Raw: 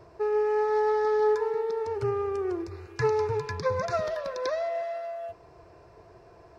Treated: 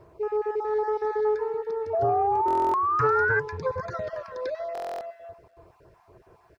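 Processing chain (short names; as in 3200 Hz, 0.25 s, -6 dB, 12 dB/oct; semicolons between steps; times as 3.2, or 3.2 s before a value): random spectral dropouts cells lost 26%; bit-crush 11-bit; high shelf 2800 Hz -11 dB; notch 700 Hz, Q 17; echo 0.291 s -15.5 dB; painted sound rise, 1.93–3.4, 650–1600 Hz -24 dBFS; stuck buffer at 2.46/4.73, samples 1024, times 11; Doppler distortion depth 0.17 ms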